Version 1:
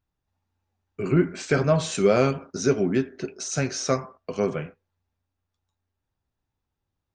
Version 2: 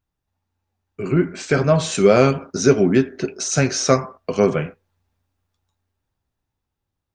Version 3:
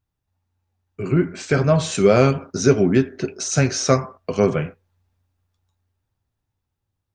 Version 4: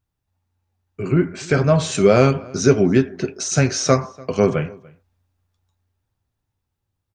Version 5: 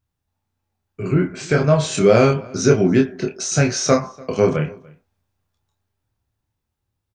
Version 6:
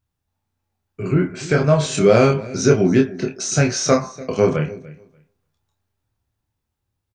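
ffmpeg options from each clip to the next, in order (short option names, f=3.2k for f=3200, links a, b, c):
-af "dynaudnorm=f=270:g=13:m=11.5dB,volume=1dB"
-af "equalizer=f=100:w=1.7:g=7,volume=-1.5dB"
-filter_complex "[0:a]asplit=2[a][b];[b]adelay=291.5,volume=-24dB,highshelf=f=4k:g=-6.56[c];[a][c]amix=inputs=2:normalize=0,volume=1dB"
-filter_complex "[0:a]asplit=2[a][b];[b]adelay=27,volume=-4dB[c];[a][c]amix=inputs=2:normalize=0,volume=-1dB"
-af "aecho=1:1:292|584:0.0891|0.0169"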